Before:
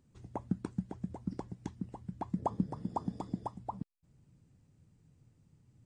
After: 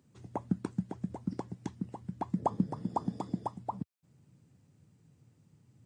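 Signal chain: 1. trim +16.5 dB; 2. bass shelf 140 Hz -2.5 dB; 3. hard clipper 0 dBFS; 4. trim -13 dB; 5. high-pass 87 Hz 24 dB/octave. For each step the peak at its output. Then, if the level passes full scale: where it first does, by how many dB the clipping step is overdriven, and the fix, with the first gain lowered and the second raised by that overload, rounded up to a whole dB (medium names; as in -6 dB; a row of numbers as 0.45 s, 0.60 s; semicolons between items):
-1.0 dBFS, -2.0 dBFS, -2.0 dBFS, -15.0 dBFS, -15.5 dBFS; nothing clips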